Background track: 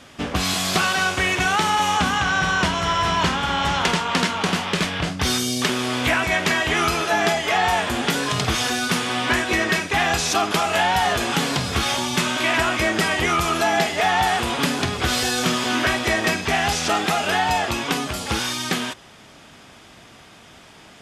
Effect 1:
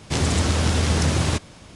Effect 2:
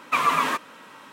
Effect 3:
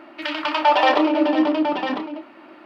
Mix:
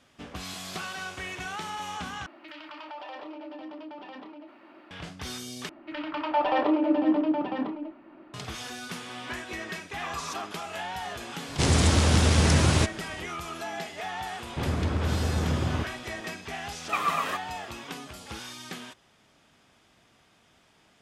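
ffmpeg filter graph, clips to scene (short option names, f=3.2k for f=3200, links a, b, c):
-filter_complex "[3:a]asplit=2[a][b];[2:a]asplit=2[c][d];[1:a]asplit=2[e][f];[0:a]volume=-16dB[g];[a]acompressor=threshold=-37dB:ratio=3:attack=2.3:release=70:knee=1:detection=peak[h];[b]aemphasis=mode=reproduction:type=riaa[i];[c]lowpass=1.9k[j];[f]lowpass=1.7k[k];[d]aecho=1:1:1.6:0.42[l];[g]asplit=3[m][n][o];[m]atrim=end=2.264[p];[h]atrim=end=2.65,asetpts=PTS-STARTPTS,volume=-7.5dB[q];[n]atrim=start=4.906:end=5.694[r];[i]atrim=end=2.65,asetpts=PTS-STARTPTS,volume=-9.5dB[s];[o]atrim=start=8.336[t];[j]atrim=end=1.12,asetpts=PTS-STARTPTS,volume=-16dB,afade=t=in:d=0.004:c=hsin,afade=t=out:st=1.116:d=0.004:c=hsin,adelay=9900[u];[e]atrim=end=1.75,asetpts=PTS-STARTPTS,volume=-0.5dB,afade=t=in:d=0.004:c=hsin,afade=t=out:st=1.746:d=0.004:c=hsin,adelay=11480[v];[k]atrim=end=1.75,asetpts=PTS-STARTPTS,volume=-6.5dB,afade=t=in:d=0.004:c=hsin,afade=t=out:st=1.746:d=0.004:c=hsin,adelay=14460[w];[l]atrim=end=1.12,asetpts=PTS-STARTPTS,volume=-7.5dB,afade=t=in:d=0.004:c=hsin,afade=t=out:st=1.116:d=0.004:c=hsin,adelay=16800[x];[p][q]acrossfade=d=0.004:c1=hsin:c2=hsin[y];[y][r]acrossfade=d=0.004:c1=hsin:c2=hsin[z];[z][s]acrossfade=d=0.004:c1=hsin:c2=hsin[aa];[aa][t]acrossfade=d=0.004:c1=hsin:c2=hsin[ab];[ab][u][v][w][x]amix=inputs=5:normalize=0"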